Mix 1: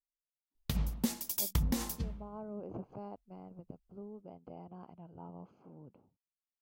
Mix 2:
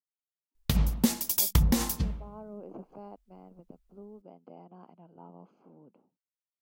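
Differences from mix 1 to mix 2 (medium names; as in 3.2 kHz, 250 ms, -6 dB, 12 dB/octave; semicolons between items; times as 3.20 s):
speech: add high-pass 180 Hz 24 dB/octave; background +8.0 dB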